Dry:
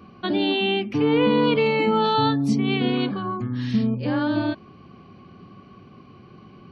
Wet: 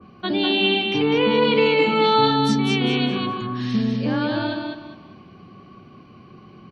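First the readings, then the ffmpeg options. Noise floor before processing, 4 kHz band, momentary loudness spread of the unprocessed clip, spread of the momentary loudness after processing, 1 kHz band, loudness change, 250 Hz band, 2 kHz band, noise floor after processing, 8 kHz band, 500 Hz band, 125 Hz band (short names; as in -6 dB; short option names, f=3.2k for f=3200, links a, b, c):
-48 dBFS, +6.0 dB, 8 LU, 10 LU, +2.5 dB, +2.0 dB, +0.5 dB, +4.5 dB, -47 dBFS, n/a, +2.5 dB, 0.0 dB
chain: -filter_complex "[0:a]acrossover=split=140[a][b];[a]asoftclip=type=hard:threshold=-37dB[c];[b]aecho=1:1:201|402|603|804:0.631|0.196|0.0606|0.0188[d];[c][d]amix=inputs=2:normalize=0,adynamicequalizer=threshold=0.0178:dfrequency=2100:dqfactor=0.7:tfrequency=2100:tqfactor=0.7:attack=5:release=100:ratio=0.375:range=2.5:mode=boostabove:tftype=highshelf"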